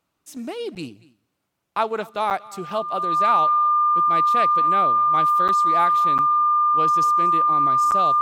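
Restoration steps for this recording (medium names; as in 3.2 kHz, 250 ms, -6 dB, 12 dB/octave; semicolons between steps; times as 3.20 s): band-stop 1.2 kHz, Q 30; interpolate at 0.75/2.30/5.48/6.18/7.91 s, 8.4 ms; inverse comb 235 ms -22.5 dB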